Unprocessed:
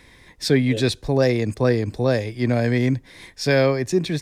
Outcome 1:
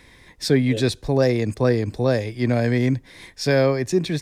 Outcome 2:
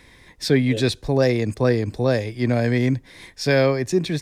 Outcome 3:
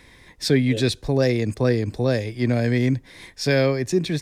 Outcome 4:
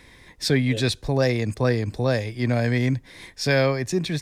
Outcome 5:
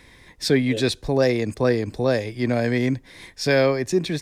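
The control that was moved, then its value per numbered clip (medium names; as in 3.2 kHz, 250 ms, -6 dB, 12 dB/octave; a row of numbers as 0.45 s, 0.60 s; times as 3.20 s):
dynamic bell, frequency: 2.8 kHz, 8 kHz, 920 Hz, 360 Hz, 110 Hz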